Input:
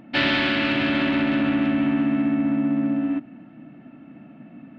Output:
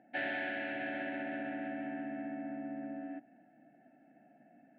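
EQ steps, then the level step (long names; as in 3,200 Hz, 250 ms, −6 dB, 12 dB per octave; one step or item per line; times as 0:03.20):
pair of resonant band-passes 1,100 Hz, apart 1.1 octaves
high-frequency loss of the air 380 metres
parametric band 1,200 Hz −15 dB 1.1 octaves
+3.5 dB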